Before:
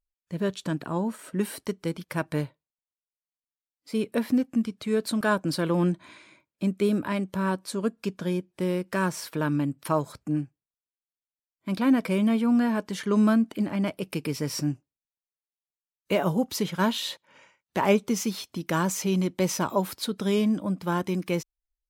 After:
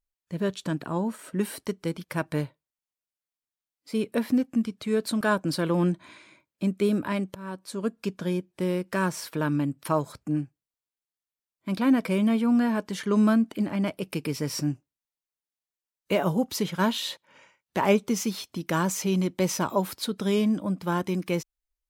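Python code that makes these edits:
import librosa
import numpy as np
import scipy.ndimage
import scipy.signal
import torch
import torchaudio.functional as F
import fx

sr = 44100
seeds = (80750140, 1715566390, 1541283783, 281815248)

y = fx.edit(x, sr, fx.fade_in_from(start_s=7.35, length_s=0.61, floor_db=-18.0), tone=tone)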